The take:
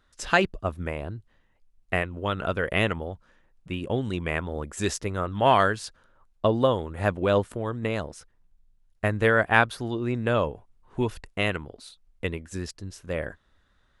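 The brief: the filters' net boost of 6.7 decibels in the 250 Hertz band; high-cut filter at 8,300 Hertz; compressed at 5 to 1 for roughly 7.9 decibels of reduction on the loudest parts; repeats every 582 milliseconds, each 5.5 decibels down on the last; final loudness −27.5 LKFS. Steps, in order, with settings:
low-pass filter 8,300 Hz
parametric band 250 Hz +8.5 dB
downward compressor 5 to 1, threshold −22 dBFS
repeating echo 582 ms, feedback 53%, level −5.5 dB
level +1 dB

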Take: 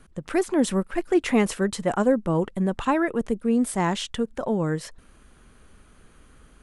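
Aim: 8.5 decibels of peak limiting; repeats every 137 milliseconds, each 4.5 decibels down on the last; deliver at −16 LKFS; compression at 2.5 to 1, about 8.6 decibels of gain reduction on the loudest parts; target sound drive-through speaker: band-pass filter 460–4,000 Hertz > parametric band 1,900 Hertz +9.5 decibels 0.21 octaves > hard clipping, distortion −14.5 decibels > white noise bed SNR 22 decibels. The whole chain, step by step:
downward compressor 2.5 to 1, threshold −28 dBFS
brickwall limiter −24.5 dBFS
band-pass filter 460–4,000 Hz
parametric band 1,900 Hz +9.5 dB 0.21 octaves
repeating echo 137 ms, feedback 60%, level −4.5 dB
hard clipping −30.5 dBFS
white noise bed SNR 22 dB
level +21 dB

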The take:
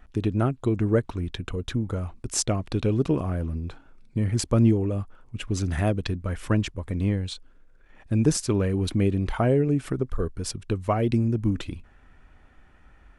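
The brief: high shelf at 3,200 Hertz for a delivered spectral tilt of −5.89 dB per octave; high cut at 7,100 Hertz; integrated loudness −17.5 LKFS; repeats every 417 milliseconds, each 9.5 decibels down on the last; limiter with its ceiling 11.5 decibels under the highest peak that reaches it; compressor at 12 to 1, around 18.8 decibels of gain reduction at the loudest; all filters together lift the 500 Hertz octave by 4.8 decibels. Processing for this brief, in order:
low-pass filter 7,100 Hz
parametric band 500 Hz +6 dB
high-shelf EQ 3,200 Hz +3 dB
downward compressor 12 to 1, threshold −32 dBFS
brickwall limiter −29 dBFS
repeating echo 417 ms, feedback 33%, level −9.5 dB
level +21.5 dB

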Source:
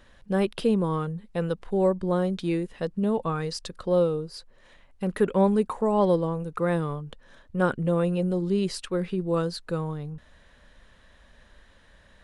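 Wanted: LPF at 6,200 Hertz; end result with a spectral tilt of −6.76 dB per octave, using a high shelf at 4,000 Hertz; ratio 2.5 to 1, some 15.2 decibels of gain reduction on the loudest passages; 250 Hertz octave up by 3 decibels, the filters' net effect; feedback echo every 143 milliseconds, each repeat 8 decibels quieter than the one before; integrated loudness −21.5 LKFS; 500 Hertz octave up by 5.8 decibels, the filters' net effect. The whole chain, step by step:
low-pass filter 6,200 Hz
parametric band 250 Hz +3 dB
parametric band 500 Hz +6 dB
high-shelf EQ 4,000 Hz −5 dB
downward compressor 2.5 to 1, threshold −36 dBFS
repeating echo 143 ms, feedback 40%, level −8 dB
level +12.5 dB

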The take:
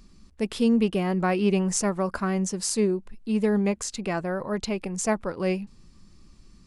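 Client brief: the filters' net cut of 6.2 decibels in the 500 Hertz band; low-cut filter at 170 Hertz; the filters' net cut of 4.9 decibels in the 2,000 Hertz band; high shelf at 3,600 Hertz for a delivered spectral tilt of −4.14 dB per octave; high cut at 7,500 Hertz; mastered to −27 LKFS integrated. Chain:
high-pass filter 170 Hz
low-pass filter 7,500 Hz
parametric band 500 Hz −8 dB
parametric band 2,000 Hz −8 dB
high-shelf EQ 3,600 Hz +6 dB
level +2 dB

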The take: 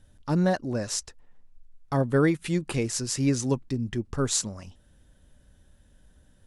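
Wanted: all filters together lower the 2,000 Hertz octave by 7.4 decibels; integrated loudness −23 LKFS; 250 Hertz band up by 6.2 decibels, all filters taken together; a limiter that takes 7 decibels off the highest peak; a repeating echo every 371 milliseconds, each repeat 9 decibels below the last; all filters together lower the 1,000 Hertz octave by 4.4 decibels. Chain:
parametric band 250 Hz +8.5 dB
parametric band 1,000 Hz −5 dB
parametric band 2,000 Hz −8 dB
brickwall limiter −15.5 dBFS
repeating echo 371 ms, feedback 35%, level −9 dB
level +3 dB

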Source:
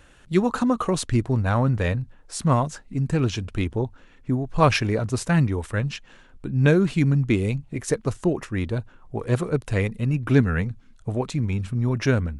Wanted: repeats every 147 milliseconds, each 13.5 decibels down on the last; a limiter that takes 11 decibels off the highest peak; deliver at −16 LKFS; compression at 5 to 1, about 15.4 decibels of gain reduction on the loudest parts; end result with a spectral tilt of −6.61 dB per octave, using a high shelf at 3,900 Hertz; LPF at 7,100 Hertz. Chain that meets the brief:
low-pass filter 7,100 Hz
high-shelf EQ 3,900 Hz −7.5 dB
downward compressor 5 to 1, threshold −30 dBFS
brickwall limiter −30 dBFS
repeating echo 147 ms, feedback 21%, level −13.5 dB
level +23 dB

